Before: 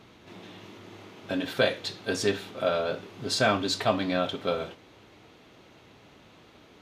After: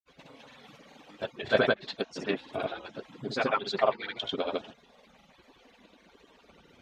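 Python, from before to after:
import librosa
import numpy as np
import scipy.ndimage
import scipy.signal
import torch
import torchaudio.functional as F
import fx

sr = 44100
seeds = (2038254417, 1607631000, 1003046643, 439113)

y = fx.hpss_only(x, sr, part='percussive')
y = fx.env_lowpass_down(y, sr, base_hz=3000.0, full_db=-28.5)
y = fx.granulator(y, sr, seeds[0], grain_ms=100.0, per_s=20.0, spray_ms=100.0, spread_st=0)
y = y * librosa.db_to_amplitude(2.0)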